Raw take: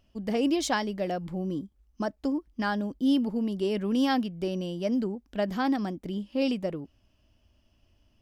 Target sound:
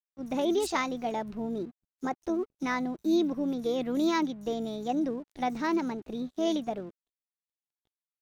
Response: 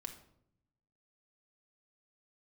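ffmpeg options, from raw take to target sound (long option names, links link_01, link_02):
-filter_complex "[0:a]acrossover=split=5500[link_01][link_02];[link_01]adelay=50[link_03];[link_03][link_02]amix=inputs=2:normalize=0,asplit=2[link_04][link_05];[link_05]asetrate=29433,aresample=44100,atempo=1.49831,volume=-15dB[link_06];[link_04][link_06]amix=inputs=2:normalize=0,aeval=exprs='sgn(val(0))*max(abs(val(0))-0.00178,0)':channel_layout=same,asetrate=53981,aresample=44100,atempo=0.816958,volume=-1.5dB"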